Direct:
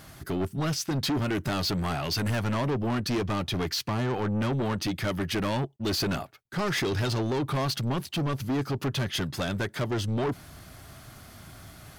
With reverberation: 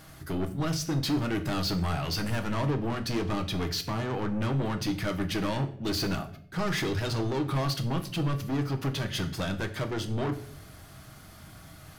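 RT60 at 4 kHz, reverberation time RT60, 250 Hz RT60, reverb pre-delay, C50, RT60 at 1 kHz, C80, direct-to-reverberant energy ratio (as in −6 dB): 0.45 s, 0.60 s, 0.85 s, 6 ms, 13.5 dB, 0.50 s, 16.5 dB, 5.5 dB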